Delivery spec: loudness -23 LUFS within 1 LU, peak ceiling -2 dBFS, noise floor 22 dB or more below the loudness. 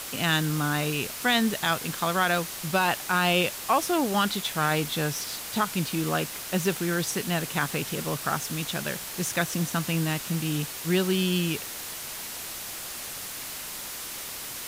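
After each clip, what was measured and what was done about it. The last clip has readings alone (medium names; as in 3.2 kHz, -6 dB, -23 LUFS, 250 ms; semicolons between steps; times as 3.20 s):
noise floor -37 dBFS; noise floor target -49 dBFS; loudness -27.0 LUFS; peak level -11.5 dBFS; loudness target -23.0 LUFS
-> noise reduction 12 dB, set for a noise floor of -37 dBFS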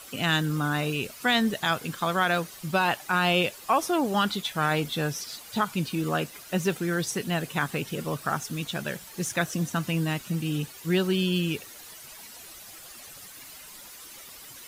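noise floor -46 dBFS; noise floor target -50 dBFS
-> noise reduction 6 dB, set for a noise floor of -46 dBFS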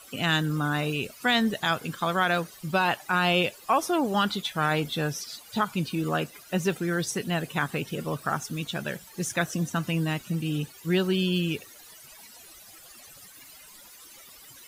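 noise floor -50 dBFS; loudness -27.5 LUFS; peak level -12.0 dBFS; loudness target -23.0 LUFS
-> trim +4.5 dB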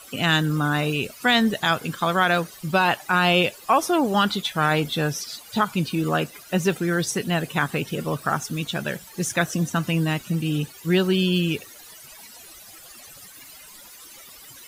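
loudness -23.0 LUFS; peak level -7.5 dBFS; noise floor -45 dBFS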